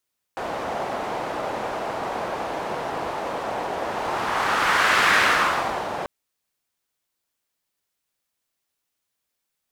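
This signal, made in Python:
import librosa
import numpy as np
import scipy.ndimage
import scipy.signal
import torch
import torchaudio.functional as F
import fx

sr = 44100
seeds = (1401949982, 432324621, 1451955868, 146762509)

y = fx.whoosh(sr, seeds[0], length_s=5.69, peak_s=4.76, rise_s=1.47, fall_s=0.85, ends_hz=730.0, peak_hz=1600.0, q=1.7, swell_db=10.5)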